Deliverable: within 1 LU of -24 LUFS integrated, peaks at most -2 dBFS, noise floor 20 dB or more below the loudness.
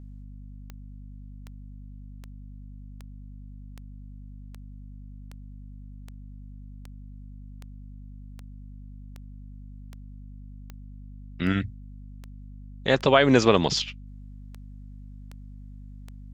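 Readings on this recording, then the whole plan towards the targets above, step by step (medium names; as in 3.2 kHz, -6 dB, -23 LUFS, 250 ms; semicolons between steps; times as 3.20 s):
clicks found 21; hum 50 Hz; highest harmonic 250 Hz; hum level -40 dBFS; loudness -22.5 LUFS; peak level -3.0 dBFS; loudness target -24.0 LUFS
-> de-click; de-hum 50 Hz, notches 5; trim -1.5 dB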